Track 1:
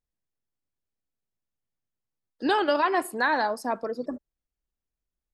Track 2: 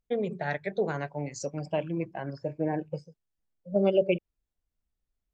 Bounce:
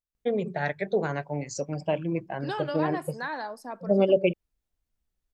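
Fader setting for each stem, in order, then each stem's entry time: -9.5 dB, +2.5 dB; 0.00 s, 0.15 s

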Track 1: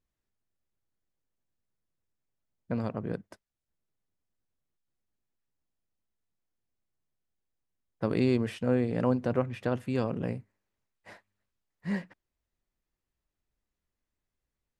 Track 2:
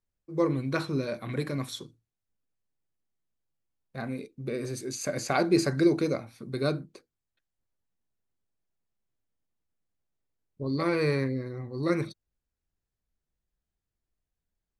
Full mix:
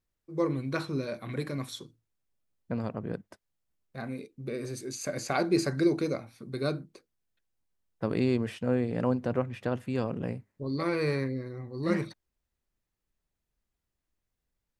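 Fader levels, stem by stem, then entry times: -1.0 dB, -2.5 dB; 0.00 s, 0.00 s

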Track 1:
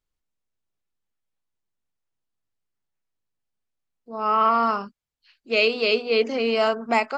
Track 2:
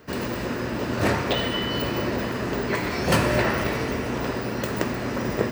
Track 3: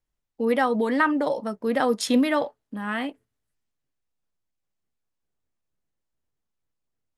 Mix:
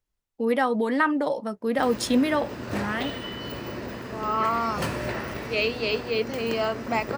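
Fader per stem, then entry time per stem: -5.5 dB, -8.5 dB, -1.0 dB; 0.00 s, 1.70 s, 0.00 s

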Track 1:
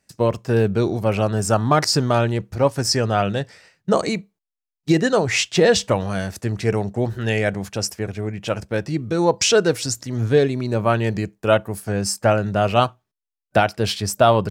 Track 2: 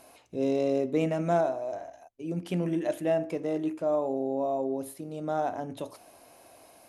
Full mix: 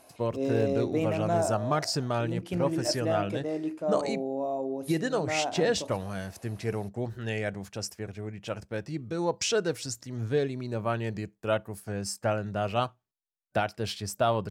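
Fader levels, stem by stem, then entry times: -11.0 dB, -2.0 dB; 0.00 s, 0.00 s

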